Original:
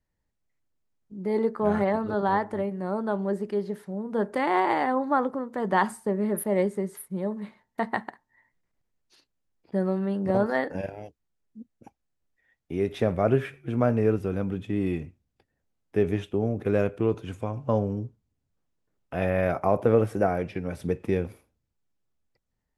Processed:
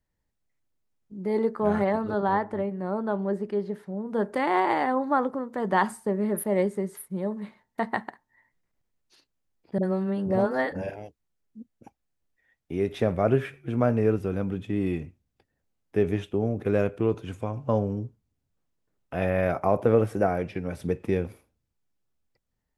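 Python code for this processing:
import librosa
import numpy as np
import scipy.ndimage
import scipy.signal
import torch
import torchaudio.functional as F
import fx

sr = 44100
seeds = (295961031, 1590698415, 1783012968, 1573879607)

y = fx.high_shelf(x, sr, hz=5000.0, db=-9.5, at=(2.18, 4.07))
y = fx.dispersion(y, sr, late='highs', ms=50.0, hz=480.0, at=(9.78, 10.96))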